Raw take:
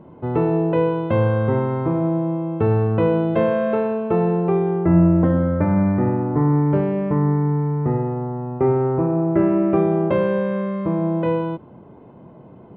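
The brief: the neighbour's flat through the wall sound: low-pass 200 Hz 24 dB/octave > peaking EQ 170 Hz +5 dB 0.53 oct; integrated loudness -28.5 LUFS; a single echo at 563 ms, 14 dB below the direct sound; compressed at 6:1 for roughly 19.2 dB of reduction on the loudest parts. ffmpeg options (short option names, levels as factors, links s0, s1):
-af "acompressor=threshold=0.0251:ratio=6,lowpass=f=200:w=0.5412,lowpass=f=200:w=1.3066,equalizer=f=170:t=o:w=0.53:g=5,aecho=1:1:563:0.2,volume=2.37"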